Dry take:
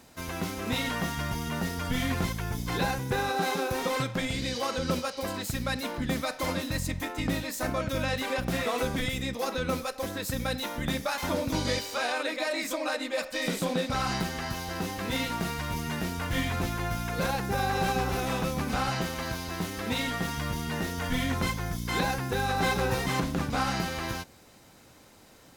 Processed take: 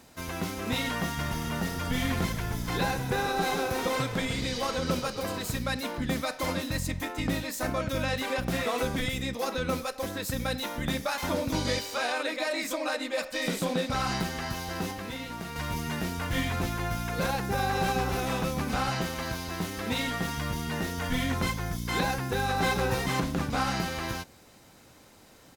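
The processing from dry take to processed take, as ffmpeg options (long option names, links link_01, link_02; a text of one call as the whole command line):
ffmpeg -i in.wav -filter_complex "[0:a]asplit=3[link_01][link_02][link_03];[link_01]afade=type=out:start_time=1.18:duration=0.02[link_04];[link_02]asplit=8[link_05][link_06][link_07][link_08][link_09][link_10][link_11][link_12];[link_06]adelay=132,afreqshift=-33,volume=-12dB[link_13];[link_07]adelay=264,afreqshift=-66,volume=-16dB[link_14];[link_08]adelay=396,afreqshift=-99,volume=-20dB[link_15];[link_09]adelay=528,afreqshift=-132,volume=-24dB[link_16];[link_10]adelay=660,afreqshift=-165,volume=-28.1dB[link_17];[link_11]adelay=792,afreqshift=-198,volume=-32.1dB[link_18];[link_12]adelay=924,afreqshift=-231,volume=-36.1dB[link_19];[link_05][link_13][link_14][link_15][link_16][link_17][link_18][link_19]amix=inputs=8:normalize=0,afade=type=in:start_time=1.18:duration=0.02,afade=type=out:start_time=5.57:duration=0.02[link_20];[link_03]afade=type=in:start_time=5.57:duration=0.02[link_21];[link_04][link_20][link_21]amix=inputs=3:normalize=0,asettb=1/sr,asplit=3[link_22][link_23][link_24];[link_22]atrim=end=14.914[link_25];[link_23]atrim=start=14.91:end=15.56,asetpts=PTS-STARTPTS,afade=type=in:duration=0.004:curve=qsin,afade=type=out:start_time=0.646:duration=0.004:curve=qsin,acrossover=split=710|3900[link_26][link_27][link_28];[link_26]acompressor=threshold=-37dB:ratio=4[link_29];[link_27]acompressor=threshold=-41dB:ratio=4[link_30];[link_28]acompressor=threshold=-50dB:ratio=4[link_31];[link_29][link_30][link_31]amix=inputs=3:normalize=0[link_32];[link_24]atrim=start=15.556[link_33];[link_25][link_32]acrossfade=duration=0.004:curve1=hsin:curve2=qsin[link_34];[link_34][link_33]acrossfade=duration=0.004:curve1=qsin:curve2=hsin" out.wav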